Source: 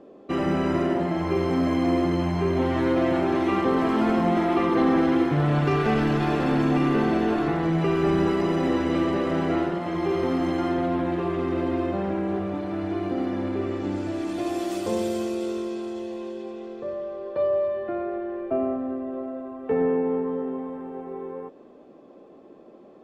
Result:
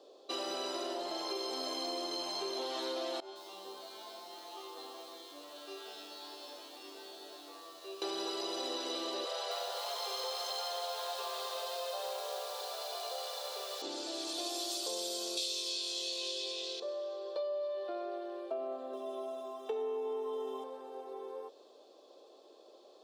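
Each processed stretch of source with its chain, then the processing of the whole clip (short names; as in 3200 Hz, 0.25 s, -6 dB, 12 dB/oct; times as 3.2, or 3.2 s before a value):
3.2–8.02 high shelf 4200 Hz -9.5 dB + resonator 96 Hz, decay 0.61 s, mix 100% + lo-fi delay 0.155 s, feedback 35%, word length 9-bit, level -10.5 dB
9.25–13.82 steep high-pass 430 Hz 96 dB/oct + lo-fi delay 0.26 s, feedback 55%, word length 8-bit, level -6 dB
15.37–16.8 resonant high shelf 1800 Hz +9.5 dB, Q 1.5 + doubler 21 ms -3 dB
18.93–20.64 Butterworth band-stop 4400 Hz, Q 6.6 + high shelf 3300 Hz +8.5 dB + comb 4.8 ms, depth 77%
whole clip: HPF 430 Hz 24 dB/oct; resonant high shelf 2900 Hz +12 dB, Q 3; compressor, threshold -29 dBFS; gain -5.5 dB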